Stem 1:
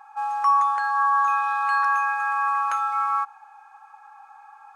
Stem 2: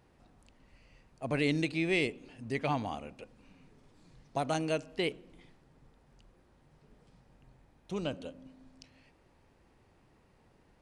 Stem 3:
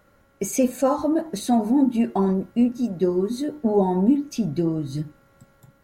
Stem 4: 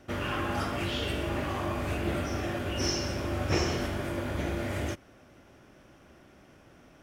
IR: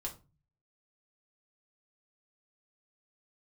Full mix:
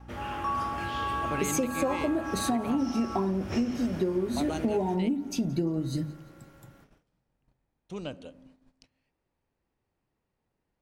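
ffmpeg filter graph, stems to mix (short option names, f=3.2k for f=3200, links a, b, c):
-filter_complex "[0:a]aeval=exprs='val(0)+0.0178*(sin(2*PI*60*n/s)+sin(2*PI*2*60*n/s)/2+sin(2*PI*3*60*n/s)/3+sin(2*PI*4*60*n/s)/4+sin(2*PI*5*60*n/s)/5)':c=same,volume=-11.5dB[a];[1:a]volume=-2dB[b];[2:a]bandreject=f=50:t=h:w=6,bandreject=f=100:t=h:w=6,bandreject=f=150:t=h:w=6,bandreject=f=200:t=h:w=6,bandreject=f=250:t=h:w=6,adelay=1000,volume=0.5dB,asplit=2[c][d];[d]volume=-21.5dB[e];[3:a]volume=-7dB,asplit=2[f][g];[g]volume=-11.5dB[h];[e][h]amix=inputs=2:normalize=0,aecho=0:1:173|346|519|692|865|1038|1211|1384:1|0.52|0.27|0.141|0.0731|0.038|0.0198|0.0103[i];[a][b][c][f][i]amix=inputs=5:normalize=0,agate=range=-14dB:threshold=-57dB:ratio=16:detection=peak,acompressor=threshold=-24dB:ratio=10"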